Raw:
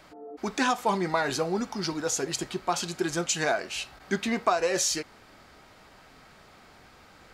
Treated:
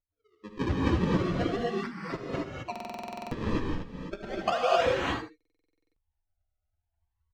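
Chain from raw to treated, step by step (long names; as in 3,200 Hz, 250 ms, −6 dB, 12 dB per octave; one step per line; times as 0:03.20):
spectral dynamics exaggerated over time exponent 3
0:01.87–0:04.52: high-pass filter 570 Hz 12 dB per octave
sample-and-hold swept by an LFO 36×, swing 160% 0.35 Hz
high-frequency loss of the air 170 metres
single-tap delay 78 ms −13.5 dB
reverb whose tail is shaped and stops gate 290 ms rising, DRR −4.5 dB
buffer that repeats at 0:02.71/0:05.36, samples 2,048, times 12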